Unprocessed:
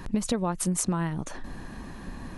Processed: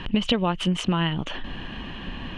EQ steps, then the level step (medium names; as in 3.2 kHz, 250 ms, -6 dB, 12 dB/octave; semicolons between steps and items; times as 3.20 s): resonant low-pass 3 kHz, resonance Q 12; +4.0 dB